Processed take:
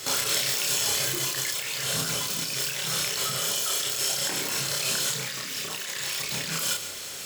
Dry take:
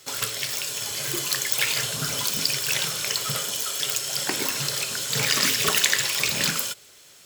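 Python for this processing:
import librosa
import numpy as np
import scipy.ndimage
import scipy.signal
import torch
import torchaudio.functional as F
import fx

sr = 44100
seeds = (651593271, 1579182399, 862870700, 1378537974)

y = fx.over_compress(x, sr, threshold_db=-35.0, ratio=-1.0)
y = fx.doubler(y, sr, ms=31.0, db=-2.5)
y = y + 10.0 ** (-12.5 / 20.0) * np.pad(y, (int(140 * sr / 1000.0), 0))[:len(y)]
y = y * librosa.db_to_amplitude(3.5)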